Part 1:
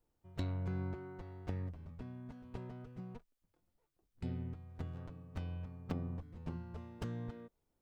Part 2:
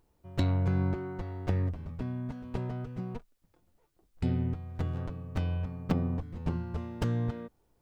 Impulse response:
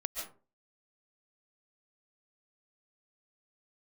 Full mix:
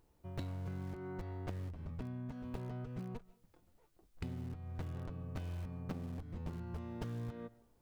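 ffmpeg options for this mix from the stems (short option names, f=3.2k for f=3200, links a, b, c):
-filter_complex "[0:a]aeval=exprs='(mod(94.4*val(0)+1,2)-1)/94.4':c=same,volume=-6.5dB,asplit=2[a][b];[b]volume=-20.5dB[c];[1:a]volume=-1.5dB,asplit=2[d][e];[e]volume=-23dB[f];[2:a]atrim=start_sample=2205[g];[c][f]amix=inputs=2:normalize=0[h];[h][g]afir=irnorm=-1:irlink=0[i];[a][d][i]amix=inputs=3:normalize=0,acompressor=threshold=-40dB:ratio=6"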